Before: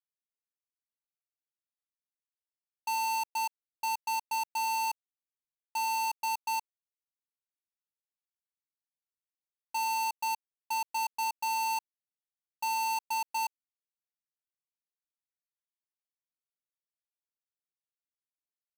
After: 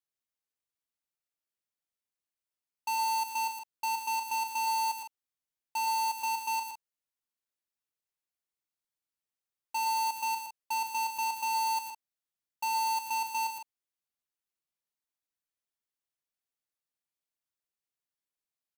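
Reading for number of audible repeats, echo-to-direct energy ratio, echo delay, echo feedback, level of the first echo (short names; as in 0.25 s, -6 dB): 2, -4.5 dB, 0.116 s, no steady repeat, -5.5 dB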